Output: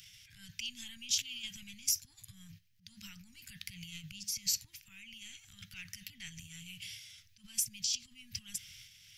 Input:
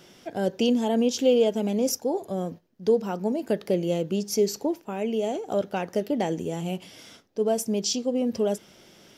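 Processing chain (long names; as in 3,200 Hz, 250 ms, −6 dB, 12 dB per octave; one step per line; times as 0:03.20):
upward compression, threshold −42 dBFS
transient designer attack −6 dB, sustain +9 dB
Chebyshev band-stop filter 110–2,200 Hz, order 3
level −5 dB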